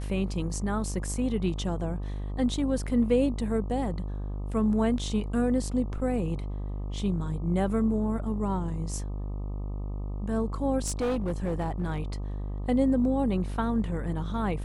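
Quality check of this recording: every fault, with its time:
buzz 50 Hz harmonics 25 -33 dBFS
10.86–12.00 s: clipped -24 dBFS

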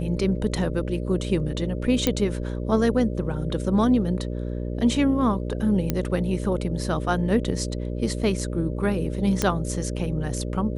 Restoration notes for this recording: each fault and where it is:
buzz 60 Hz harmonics 10 -29 dBFS
2.07 s: pop -6 dBFS
5.90 s: pop -9 dBFS
9.42 s: pop -7 dBFS

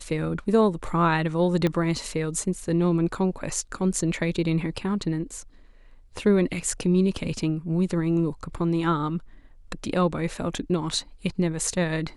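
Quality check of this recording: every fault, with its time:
1.67 s: pop -12 dBFS

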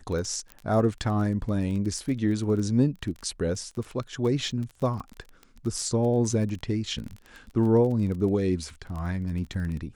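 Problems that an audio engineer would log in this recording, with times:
crackle 21 per s -33 dBFS
0.52 s: pop -24 dBFS

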